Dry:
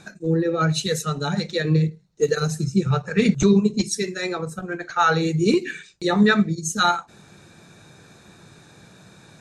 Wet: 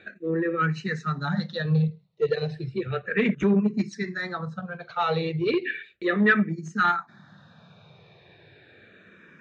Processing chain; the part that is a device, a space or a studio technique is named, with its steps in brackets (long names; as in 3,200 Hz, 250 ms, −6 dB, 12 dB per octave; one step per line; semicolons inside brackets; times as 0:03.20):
barber-pole phaser into a guitar amplifier (frequency shifter mixed with the dry sound −0.34 Hz; soft clipping −13 dBFS, distortion −18 dB; loudspeaker in its box 110–3,600 Hz, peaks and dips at 300 Hz −5 dB, 840 Hz −4 dB, 1,800 Hz +6 dB)
high-shelf EQ 10,000 Hz +3 dB